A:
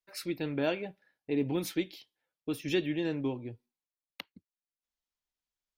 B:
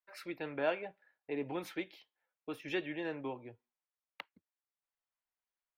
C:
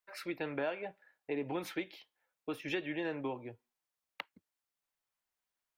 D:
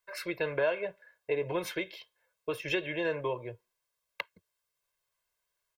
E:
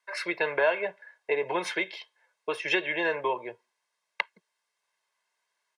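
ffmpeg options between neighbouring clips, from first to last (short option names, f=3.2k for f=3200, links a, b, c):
-filter_complex "[0:a]acrossover=split=520 2400:gain=0.178 1 0.158[a][b][c];[a][b][c]amix=inputs=3:normalize=0,volume=2dB"
-af "acompressor=threshold=-36dB:ratio=6,volume=4dB"
-af "aecho=1:1:1.9:0.82,volume=4dB"
-af "highpass=f=210:w=0.5412,highpass=f=210:w=1.3066,equalizer=f=290:t=q:w=4:g=-8,equalizer=f=520:t=q:w=4:g=-5,equalizer=f=840:t=q:w=4:g=8,equalizer=f=1.9k:t=q:w=4:g=6,equalizer=f=7.5k:t=q:w=4:g=-4,lowpass=f=9.3k:w=0.5412,lowpass=f=9.3k:w=1.3066,volume=5dB"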